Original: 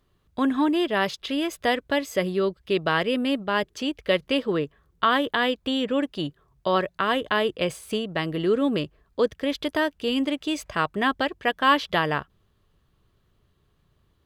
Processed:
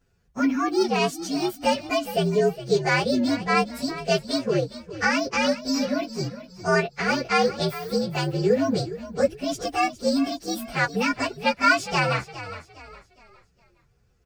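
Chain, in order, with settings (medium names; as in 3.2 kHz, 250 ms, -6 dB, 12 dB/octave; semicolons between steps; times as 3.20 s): frequency axis rescaled in octaves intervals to 119%; comb of notches 310 Hz; frequency-shifting echo 411 ms, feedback 37%, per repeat -41 Hz, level -14 dB; trim +5 dB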